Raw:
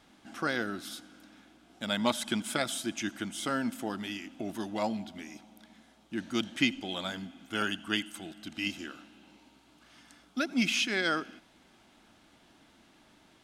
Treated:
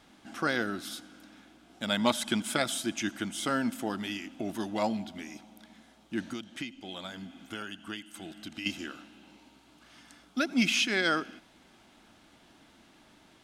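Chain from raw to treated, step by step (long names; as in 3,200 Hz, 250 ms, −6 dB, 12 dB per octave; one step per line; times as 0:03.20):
0:06.33–0:08.66: downward compressor 4 to 1, threshold −40 dBFS, peak gain reduction 16 dB
level +2 dB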